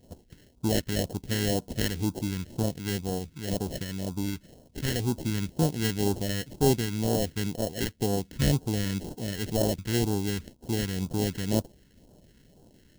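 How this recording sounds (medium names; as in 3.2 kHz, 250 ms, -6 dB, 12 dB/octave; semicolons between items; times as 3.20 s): aliases and images of a low sample rate 1.2 kHz, jitter 0%; phasing stages 2, 2 Hz, lowest notch 690–1900 Hz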